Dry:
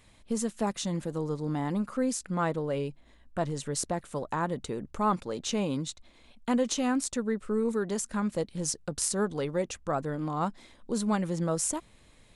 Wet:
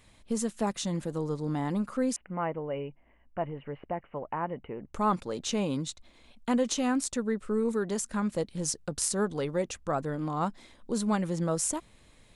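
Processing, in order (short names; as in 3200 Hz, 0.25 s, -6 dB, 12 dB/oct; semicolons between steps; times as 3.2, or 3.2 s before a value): 2.16–4.94 rippled Chebyshev low-pass 3000 Hz, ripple 6 dB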